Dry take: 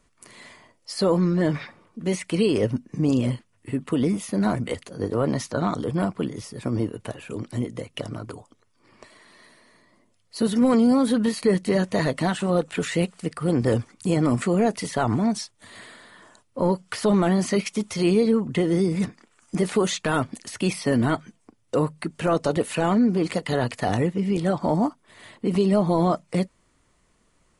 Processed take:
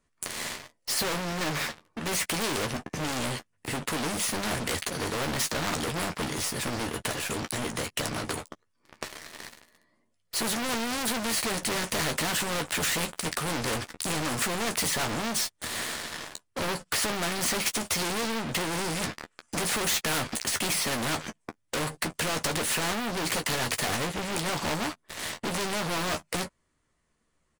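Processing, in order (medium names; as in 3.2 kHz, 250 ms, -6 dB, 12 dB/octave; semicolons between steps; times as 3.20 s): peaking EQ 1.7 kHz +4 dB 0.29 oct; waveshaping leveller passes 5; early reflections 13 ms -7.5 dB, 23 ms -17.5 dB; spectrum-flattening compressor 2:1; trim -7.5 dB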